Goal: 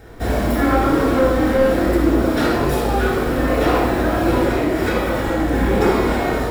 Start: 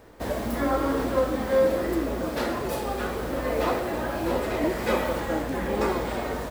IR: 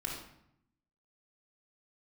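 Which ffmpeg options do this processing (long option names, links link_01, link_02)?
-filter_complex "[0:a]asettb=1/sr,asplit=3[link_01][link_02][link_03];[link_01]atrim=end=4.384[link_04];[link_02]atrim=start=4.38:end=5.53,asetpts=PTS-STARTPTS,afade=type=in:duration=0.004:curve=qsin,afade=type=out:start_time=1.146:duration=0.004:curve=qsin,acompressor=threshold=-25dB:ratio=6[link_05];[link_03]atrim=start=5.526[link_06];[link_04][link_05]acrossfade=duration=0.004:curve1=hsin:curve2=qsin[link_07];[link_07][link_06]acrossfade=duration=0.004:curve1=qsin:curve2=hsin,aeval=exprs='0.282*sin(PI/2*1.58*val(0)/0.282)':channel_layout=same[link_08];[1:a]atrim=start_sample=2205[link_09];[link_08][link_09]afir=irnorm=-1:irlink=0"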